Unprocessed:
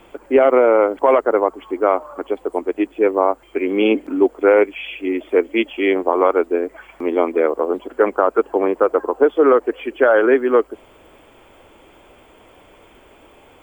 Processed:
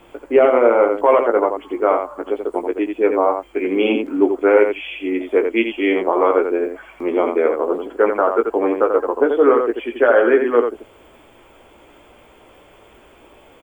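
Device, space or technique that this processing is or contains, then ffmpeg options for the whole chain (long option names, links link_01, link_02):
slapback doubling: -filter_complex "[0:a]asplit=3[link_01][link_02][link_03];[link_02]adelay=17,volume=-6dB[link_04];[link_03]adelay=86,volume=-6dB[link_05];[link_01][link_04][link_05]amix=inputs=3:normalize=0,volume=-1.5dB"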